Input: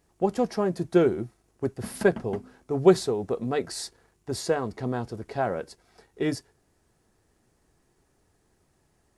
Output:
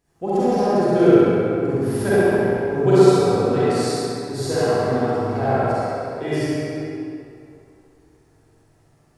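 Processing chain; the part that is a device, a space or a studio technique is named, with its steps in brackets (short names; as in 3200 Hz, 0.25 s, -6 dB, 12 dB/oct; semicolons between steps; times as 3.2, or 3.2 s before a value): tunnel (flutter echo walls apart 11.5 m, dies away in 1.1 s; reverb RT60 2.8 s, pre-delay 35 ms, DRR -10.5 dB); gain -5 dB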